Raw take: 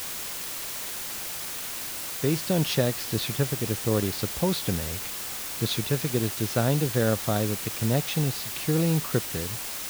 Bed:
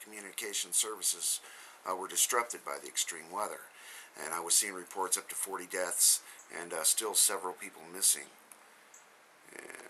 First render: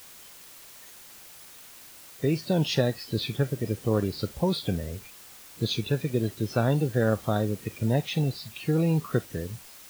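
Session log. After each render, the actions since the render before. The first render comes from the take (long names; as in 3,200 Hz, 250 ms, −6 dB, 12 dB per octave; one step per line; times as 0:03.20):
noise reduction from a noise print 14 dB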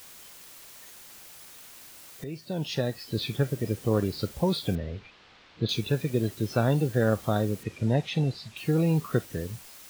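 0:02.24–0:03.35: fade in, from −14 dB
0:04.75–0:05.69: low-pass filter 4,000 Hz 24 dB per octave
0:07.63–0:08.57: high-frequency loss of the air 63 metres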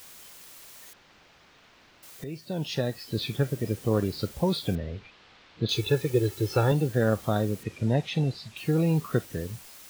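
0:00.93–0:02.03: high-frequency loss of the air 220 metres
0:05.71–0:06.72: comb filter 2.3 ms, depth 91%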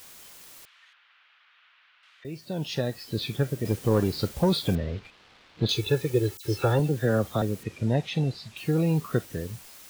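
0:00.65–0:02.25: Chebyshev band-pass filter 1,300–3,200 Hz
0:03.65–0:05.72: leveller curve on the samples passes 1
0:06.37–0:07.42: all-pass dispersion lows, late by 78 ms, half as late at 2,700 Hz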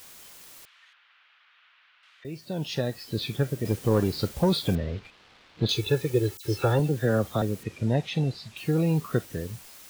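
no processing that can be heard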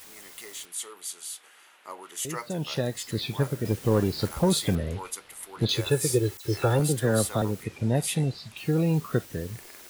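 mix in bed −5 dB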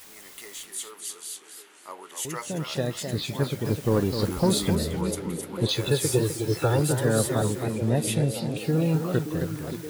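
echo through a band-pass that steps 573 ms, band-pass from 250 Hz, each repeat 0.7 octaves, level −5.5 dB
feedback echo with a swinging delay time 259 ms, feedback 33%, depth 140 cents, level −7.5 dB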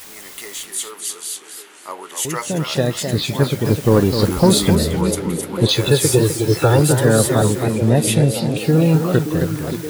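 level +9.5 dB
brickwall limiter −2 dBFS, peak gain reduction 2 dB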